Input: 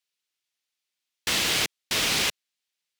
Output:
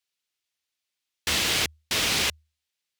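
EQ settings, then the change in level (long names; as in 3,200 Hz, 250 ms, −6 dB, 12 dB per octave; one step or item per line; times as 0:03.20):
parametric band 77 Hz +13.5 dB 0.25 octaves
0.0 dB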